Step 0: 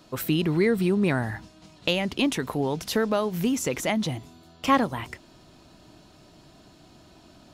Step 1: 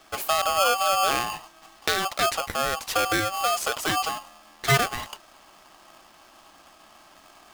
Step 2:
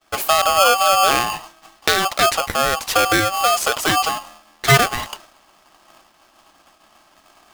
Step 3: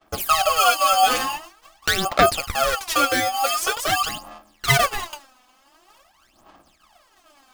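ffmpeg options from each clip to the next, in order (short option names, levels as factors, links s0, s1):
-af "aeval=exprs='val(0)*sgn(sin(2*PI*960*n/s))':c=same"
-af "agate=range=0.0224:threshold=0.00562:ratio=3:detection=peak,volume=2.37"
-af "aphaser=in_gain=1:out_gain=1:delay=4:decay=0.79:speed=0.46:type=sinusoidal,volume=0.422"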